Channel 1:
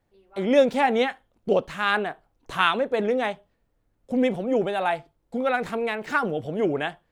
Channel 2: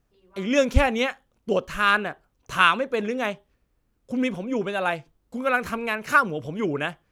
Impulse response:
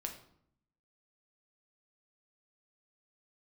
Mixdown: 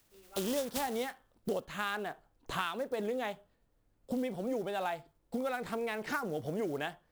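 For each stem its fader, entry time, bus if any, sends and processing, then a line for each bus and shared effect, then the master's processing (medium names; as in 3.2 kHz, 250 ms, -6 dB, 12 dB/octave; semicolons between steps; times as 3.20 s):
-2.5 dB, 0.00 s, no send, none
-0.5 dB, 0.00 s, no send, spectral contrast reduction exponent 0.14; de-hum 55.21 Hz, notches 32; auto duck -23 dB, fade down 1.80 s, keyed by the first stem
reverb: none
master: compression 6:1, threshold -32 dBFS, peak gain reduction 17 dB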